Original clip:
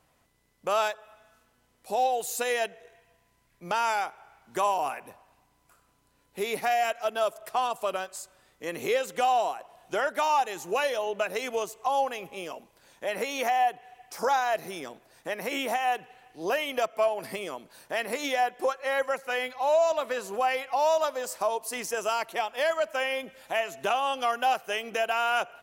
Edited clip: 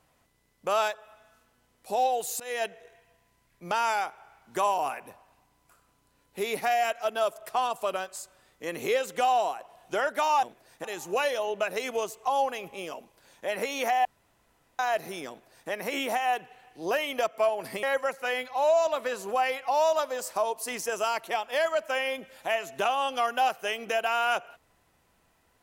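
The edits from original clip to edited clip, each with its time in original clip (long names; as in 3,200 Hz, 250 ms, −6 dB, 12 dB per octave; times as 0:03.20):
0:02.40–0:02.66: fade in, from −21 dB
0:13.64–0:14.38: fill with room tone
0:14.88–0:15.29: duplicate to 0:10.43
0:17.42–0:18.88: remove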